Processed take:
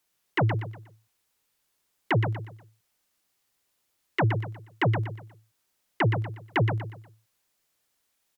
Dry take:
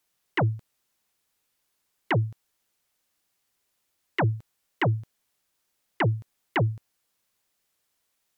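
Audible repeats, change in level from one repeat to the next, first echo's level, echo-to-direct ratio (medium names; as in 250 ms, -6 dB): 3, -9.5 dB, -7.0 dB, -6.5 dB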